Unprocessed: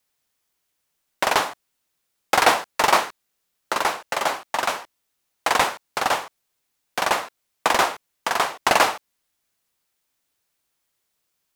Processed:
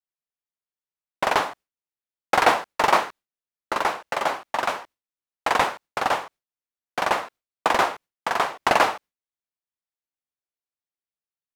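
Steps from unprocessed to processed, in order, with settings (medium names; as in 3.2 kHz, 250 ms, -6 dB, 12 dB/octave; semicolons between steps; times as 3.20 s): gate with hold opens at -34 dBFS; treble shelf 3.9 kHz -10 dB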